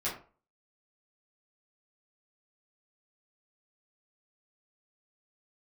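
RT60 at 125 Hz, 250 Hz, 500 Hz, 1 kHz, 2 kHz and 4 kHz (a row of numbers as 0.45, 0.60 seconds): 0.40, 0.40, 0.40, 0.40, 0.30, 0.25 seconds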